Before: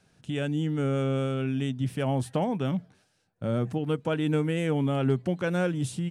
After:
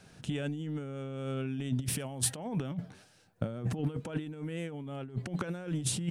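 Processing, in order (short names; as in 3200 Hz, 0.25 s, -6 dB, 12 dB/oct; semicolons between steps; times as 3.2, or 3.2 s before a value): 1.82–2.37 high shelf 3700 Hz +9.5 dB; negative-ratio compressor -33 dBFS, ratio -0.5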